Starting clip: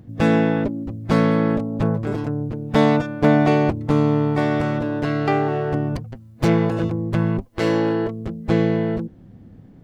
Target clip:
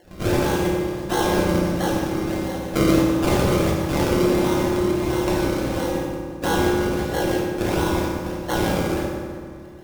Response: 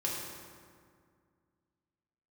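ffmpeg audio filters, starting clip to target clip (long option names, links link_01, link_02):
-filter_complex "[0:a]aeval=exprs='val(0)*sin(2*PI*1800*n/s)':channel_layout=same,acrusher=samples=35:mix=1:aa=0.000001:lfo=1:lforange=35:lforate=1.5[link_01];[1:a]atrim=start_sample=2205[link_02];[link_01][link_02]afir=irnorm=-1:irlink=0,volume=-5.5dB"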